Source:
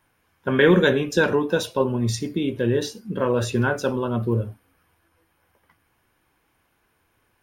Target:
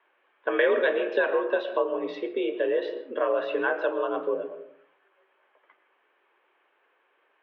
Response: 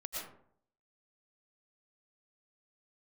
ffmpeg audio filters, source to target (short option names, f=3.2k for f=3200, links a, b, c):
-filter_complex "[0:a]highpass=f=320:t=q:w=0.5412,highpass=f=320:t=q:w=1.307,lowpass=f=3.2k:t=q:w=0.5176,lowpass=f=3.2k:t=q:w=0.7071,lowpass=f=3.2k:t=q:w=1.932,afreqshift=58,asplit=2[a][b];[1:a]atrim=start_sample=2205,lowpass=3.5k,lowshelf=f=190:g=10[c];[b][c]afir=irnorm=-1:irlink=0,volume=-10dB[d];[a][d]amix=inputs=2:normalize=0,acompressor=threshold=-24dB:ratio=2"